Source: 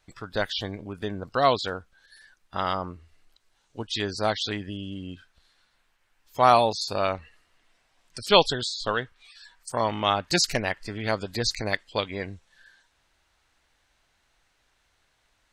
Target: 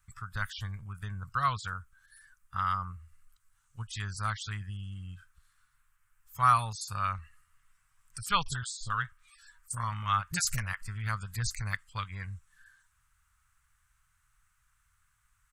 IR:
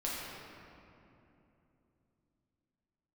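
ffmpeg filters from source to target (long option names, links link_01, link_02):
-filter_complex "[0:a]firequalizer=gain_entry='entry(120,0);entry(290,-29);entry(640,-27);entry(1200,0);entry(1800,-8);entry(4000,-17);entry(7900,1);entry(13000,3)':delay=0.05:min_phase=1,asettb=1/sr,asplit=3[link_01][link_02][link_03];[link_01]atrim=end=8.434[link_04];[link_02]atrim=start=8.43:end=10.82,asetpts=PTS-STARTPTS,afade=type=in:duration=0.004:curve=qsin,afade=type=out:start_time=2.386:duration=0.004:curve=qsin,acrossover=split=520[link_05][link_06];[link_06]adelay=30[link_07];[link_05][link_07]amix=inputs=2:normalize=0,atrim=end_sample=105399[link_08];[link_03]atrim=start=10.816[link_09];[link_04][link_08]acrossfade=duration=0.004:curve1=hsin:curve2=qsin[link_10];[link_10][link_09]acrossfade=duration=0.004:curve1=qsin:curve2=hsin,volume=1.5dB"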